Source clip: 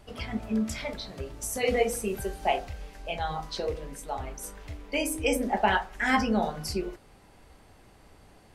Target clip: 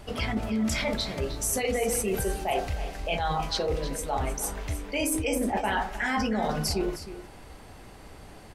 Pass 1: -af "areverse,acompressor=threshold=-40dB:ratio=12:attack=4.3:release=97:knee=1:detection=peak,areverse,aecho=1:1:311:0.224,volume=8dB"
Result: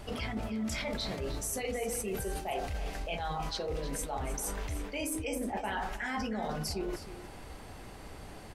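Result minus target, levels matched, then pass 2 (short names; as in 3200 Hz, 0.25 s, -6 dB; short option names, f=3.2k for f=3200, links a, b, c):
compressor: peak gain reduction +8 dB
-af "areverse,acompressor=threshold=-31.5dB:ratio=12:attack=4.3:release=97:knee=1:detection=peak,areverse,aecho=1:1:311:0.224,volume=8dB"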